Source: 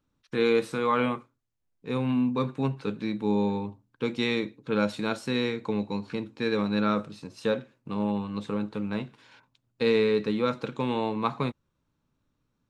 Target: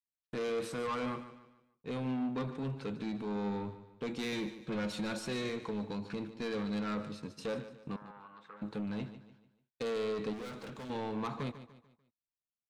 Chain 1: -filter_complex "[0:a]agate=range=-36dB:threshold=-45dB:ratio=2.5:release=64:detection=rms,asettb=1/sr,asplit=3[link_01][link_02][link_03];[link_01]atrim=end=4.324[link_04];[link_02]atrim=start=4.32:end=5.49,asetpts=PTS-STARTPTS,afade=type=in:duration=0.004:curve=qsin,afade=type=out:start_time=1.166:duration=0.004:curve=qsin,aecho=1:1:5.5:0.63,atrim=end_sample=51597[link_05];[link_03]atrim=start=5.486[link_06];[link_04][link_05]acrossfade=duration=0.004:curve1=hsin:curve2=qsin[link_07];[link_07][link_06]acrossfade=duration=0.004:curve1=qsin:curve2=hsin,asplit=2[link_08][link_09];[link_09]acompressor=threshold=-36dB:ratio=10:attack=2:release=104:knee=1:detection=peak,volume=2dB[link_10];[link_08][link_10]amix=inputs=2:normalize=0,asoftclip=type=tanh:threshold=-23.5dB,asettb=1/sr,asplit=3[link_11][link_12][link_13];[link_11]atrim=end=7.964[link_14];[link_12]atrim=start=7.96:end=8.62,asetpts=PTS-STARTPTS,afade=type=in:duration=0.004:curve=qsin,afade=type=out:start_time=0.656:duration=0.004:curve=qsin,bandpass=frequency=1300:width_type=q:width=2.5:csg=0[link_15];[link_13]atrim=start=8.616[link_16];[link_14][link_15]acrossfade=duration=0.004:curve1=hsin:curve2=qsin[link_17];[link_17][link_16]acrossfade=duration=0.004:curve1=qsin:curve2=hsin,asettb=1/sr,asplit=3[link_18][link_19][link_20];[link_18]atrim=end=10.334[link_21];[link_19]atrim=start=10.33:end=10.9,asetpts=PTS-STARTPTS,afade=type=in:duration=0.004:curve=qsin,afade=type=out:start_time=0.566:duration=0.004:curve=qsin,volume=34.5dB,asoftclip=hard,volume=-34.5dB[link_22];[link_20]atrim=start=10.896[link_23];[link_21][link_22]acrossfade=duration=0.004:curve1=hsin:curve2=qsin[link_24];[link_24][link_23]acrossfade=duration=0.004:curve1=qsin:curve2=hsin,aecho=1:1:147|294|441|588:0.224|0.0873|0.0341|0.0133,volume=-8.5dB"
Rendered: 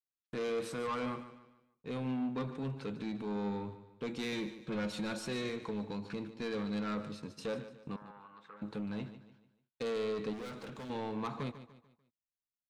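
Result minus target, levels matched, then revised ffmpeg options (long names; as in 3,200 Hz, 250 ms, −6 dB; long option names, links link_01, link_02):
downward compressor: peak gain reduction +6.5 dB
-filter_complex "[0:a]agate=range=-36dB:threshold=-45dB:ratio=2.5:release=64:detection=rms,asettb=1/sr,asplit=3[link_01][link_02][link_03];[link_01]atrim=end=4.324[link_04];[link_02]atrim=start=4.32:end=5.49,asetpts=PTS-STARTPTS,afade=type=in:duration=0.004:curve=qsin,afade=type=out:start_time=1.166:duration=0.004:curve=qsin,aecho=1:1:5.5:0.63,atrim=end_sample=51597[link_05];[link_03]atrim=start=5.486[link_06];[link_04][link_05]acrossfade=duration=0.004:curve1=hsin:curve2=qsin[link_07];[link_07][link_06]acrossfade=duration=0.004:curve1=qsin:curve2=hsin,asplit=2[link_08][link_09];[link_09]acompressor=threshold=-29dB:ratio=10:attack=2:release=104:knee=1:detection=peak,volume=2dB[link_10];[link_08][link_10]amix=inputs=2:normalize=0,asoftclip=type=tanh:threshold=-23.5dB,asettb=1/sr,asplit=3[link_11][link_12][link_13];[link_11]atrim=end=7.964[link_14];[link_12]atrim=start=7.96:end=8.62,asetpts=PTS-STARTPTS,afade=type=in:duration=0.004:curve=qsin,afade=type=out:start_time=0.656:duration=0.004:curve=qsin,bandpass=frequency=1300:width_type=q:width=2.5:csg=0[link_15];[link_13]atrim=start=8.616[link_16];[link_14][link_15]acrossfade=duration=0.004:curve1=hsin:curve2=qsin[link_17];[link_17][link_16]acrossfade=duration=0.004:curve1=qsin:curve2=hsin,asettb=1/sr,asplit=3[link_18][link_19][link_20];[link_18]atrim=end=10.334[link_21];[link_19]atrim=start=10.33:end=10.9,asetpts=PTS-STARTPTS,afade=type=in:duration=0.004:curve=qsin,afade=type=out:start_time=0.566:duration=0.004:curve=qsin,volume=34.5dB,asoftclip=hard,volume=-34.5dB[link_22];[link_20]atrim=start=10.896[link_23];[link_21][link_22]acrossfade=duration=0.004:curve1=hsin:curve2=qsin[link_24];[link_24][link_23]acrossfade=duration=0.004:curve1=qsin:curve2=hsin,aecho=1:1:147|294|441|588:0.224|0.0873|0.0341|0.0133,volume=-8.5dB"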